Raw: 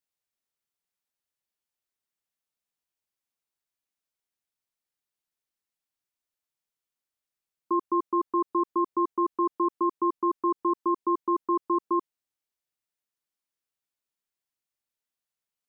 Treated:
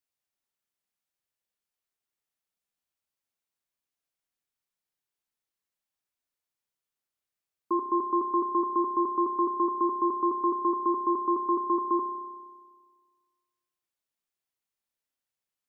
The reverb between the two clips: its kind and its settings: spring tank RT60 1.6 s, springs 31 ms, chirp 75 ms, DRR 6 dB; gain -1 dB

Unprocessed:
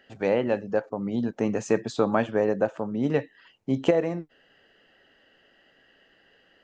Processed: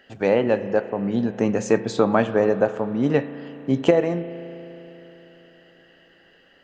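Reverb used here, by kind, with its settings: spring tank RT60 3.8 s, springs 35 ms, chirp 75 ms, DRR 12 dB; gain +4.5 dB

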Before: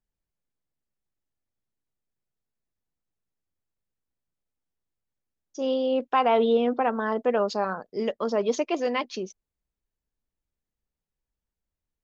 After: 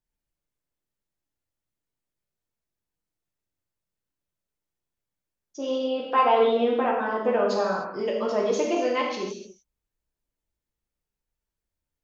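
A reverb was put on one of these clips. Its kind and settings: non-linear reverb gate 0.33 s falling, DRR -3 dB; gain -3 dB

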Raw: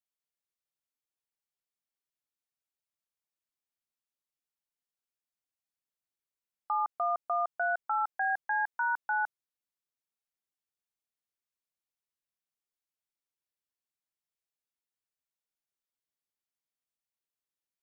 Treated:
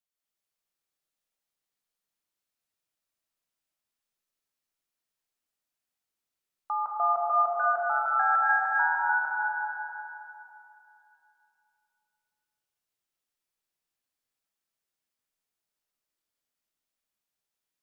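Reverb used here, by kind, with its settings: digital reverb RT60 2.9 s, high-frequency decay 0.95×, pre-delay 0.12 s, DRR -5 dB

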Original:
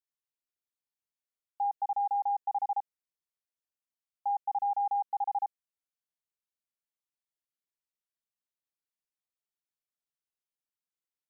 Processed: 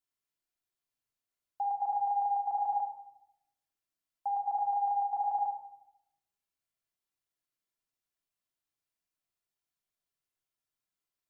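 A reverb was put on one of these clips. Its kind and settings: shoebox room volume 2300 m³, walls furnished, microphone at 3.1 m

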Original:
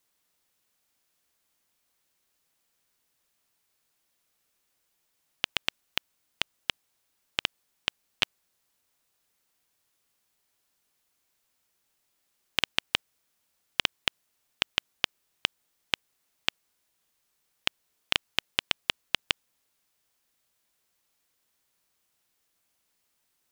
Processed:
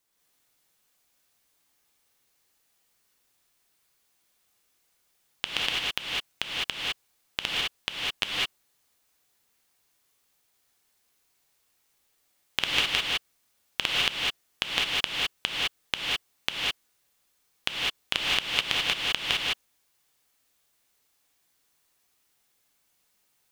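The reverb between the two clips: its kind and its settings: non-linear reverb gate 0.23 s rising, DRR -5 dB; gain -2 dB

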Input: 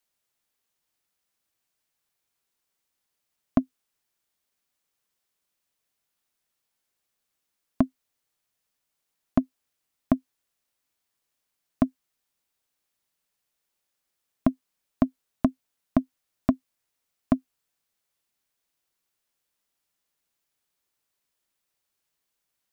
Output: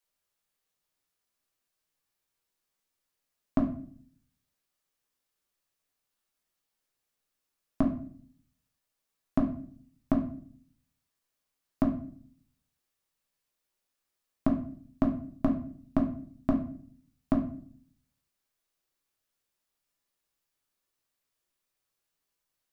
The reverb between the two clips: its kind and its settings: shoebox room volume 58 m³, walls mixed, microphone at 0.64 m; gain -5.5 dB

